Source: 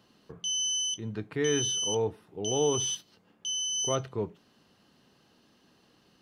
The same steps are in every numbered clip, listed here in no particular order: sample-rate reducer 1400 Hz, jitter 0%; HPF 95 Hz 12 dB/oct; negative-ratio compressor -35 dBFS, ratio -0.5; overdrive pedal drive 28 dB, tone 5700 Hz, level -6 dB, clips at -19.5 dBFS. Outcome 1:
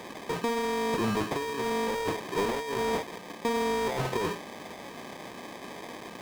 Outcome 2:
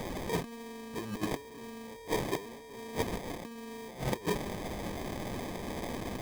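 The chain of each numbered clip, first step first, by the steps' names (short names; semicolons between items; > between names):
HPF > sample-rate reducer > negative-ratio compressor > overdrive pedal; overdrive pedal > negative-ratio compressor > HPF > sample-rate reducer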